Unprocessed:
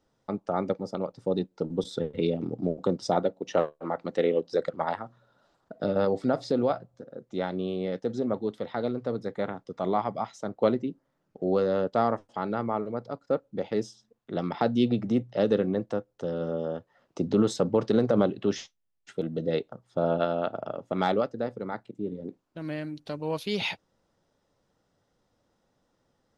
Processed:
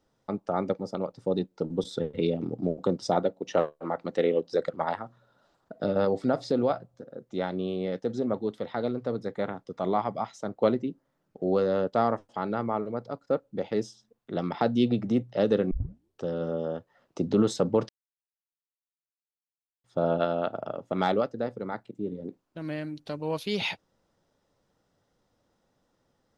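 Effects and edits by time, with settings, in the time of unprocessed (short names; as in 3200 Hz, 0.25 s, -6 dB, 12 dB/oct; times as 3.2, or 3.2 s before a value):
15.71 tape start 0.53 s
17.89–19.84 mute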